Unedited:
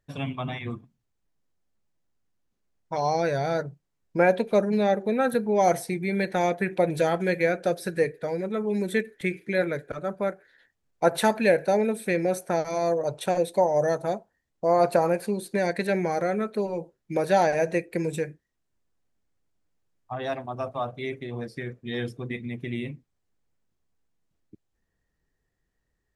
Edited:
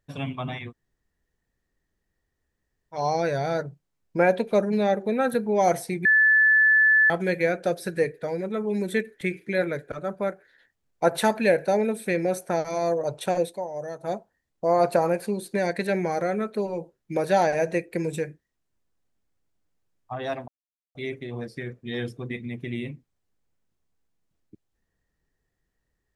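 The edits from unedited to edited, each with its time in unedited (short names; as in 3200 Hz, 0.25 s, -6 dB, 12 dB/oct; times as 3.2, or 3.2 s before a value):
0.68–2.96 room tone, crossfade 0.10 s
6.05–7.1 bleep 1740 Hz -14.5 dBFS
13.45–14.13 dip -10.5 dB, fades 0.13 s
20.48–20.95 mute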